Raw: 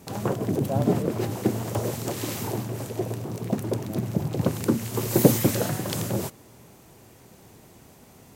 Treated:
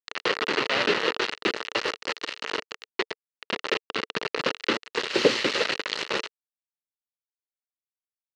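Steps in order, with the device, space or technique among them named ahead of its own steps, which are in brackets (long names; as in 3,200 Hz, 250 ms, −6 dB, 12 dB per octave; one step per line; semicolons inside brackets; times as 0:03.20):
hand-held game console (bit reduction 4 bits; loudspeaker in its box 440–5,200 Hz, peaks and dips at 450 Hz +6 dB, 720 Hz −8 dB, 1,300 Hz +4 dB, 1,900 Hz +7 dB, 2,800 Hz +9 dB, 4,200 Hz +7 dB)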